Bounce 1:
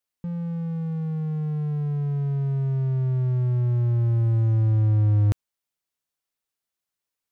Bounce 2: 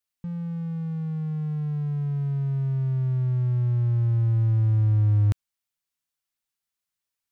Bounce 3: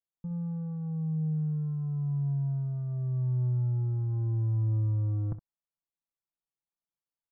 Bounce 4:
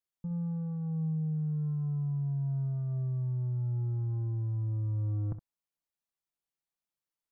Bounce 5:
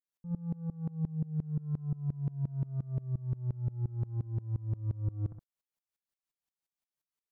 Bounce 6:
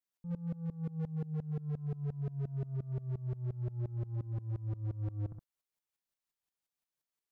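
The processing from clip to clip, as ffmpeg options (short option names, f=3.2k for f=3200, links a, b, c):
-af "equalizer=f=460:w=0.75:g=-7"
-filter_complex "[0:a]lowpass=f=1.1k:w=0.5412,lowpass=f=1.1k:w=1.3066,aecho=1:1:6:0.58,asplit=2[a][b];[b]aecho=0:1:26|64:0.126|0.224[c];[a][c]amix=inputs=2:normalize=0,volume=-7dB"
-af "alimiter=level_in=4dB:limit=-24dB:level=0:latency=1:release=41,volume=-4dB"
-af "aeval=exprs='val(0)*pow(10,-24*if(lt(mod(-5.7*n/s,1),2*abs(-5.7)/1000),1-mod(-5.7*n/s,1)/(2*abs(-5.7)/1000),(mod(-5.7*n/s,1)-2*abs(-5.7)/1000)/(1-2*abs(-5.7)/1000))/20)':c=same,volume=4.5dB"
-af "volume=32.5dB,asoftclip=hard,volume=-32.5dB"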